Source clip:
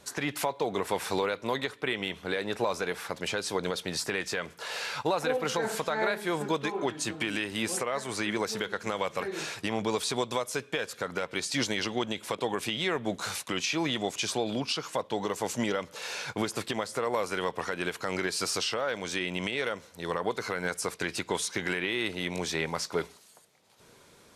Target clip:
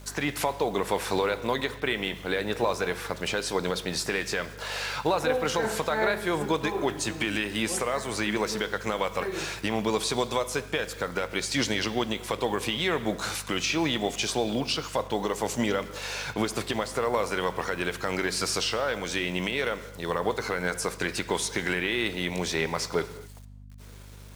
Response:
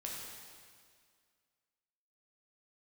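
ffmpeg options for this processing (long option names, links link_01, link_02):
-filter_complex "[0:a]acrusher=bits=8:mix=0:aa=0.000001,aeval=exprs='val(0)+0.00398*(sin(2*PI*50*n/s)+sin(2*PI*2*50*n/s)/2+sin(2*PI*3*50*n/s)/3+sin(2*PI*4*50*n/s)/4+sin(2*PI*5*50*n/s)/5)':channel_layout=same,asplit=2[link_01][link_02];[1:a]atrim=start_sample=2205,afade=type=out:start_time=0.31:duration=0.01,atrim=end_sample=14112,highshelf=frequency=8300:gain=-11.5[link_03];[link_02][link_03]afir=irnorm=-1:irlink=0,volume=-8dB[link_04];[link_01][link_04]amix=inputs=2:normalize=0,volume=1dB"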